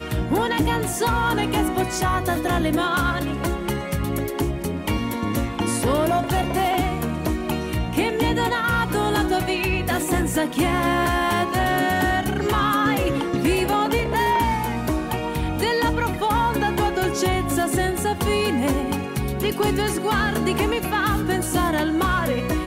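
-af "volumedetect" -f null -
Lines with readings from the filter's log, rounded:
mean_volume: -21.8 dB
max_volume: -9.4 dB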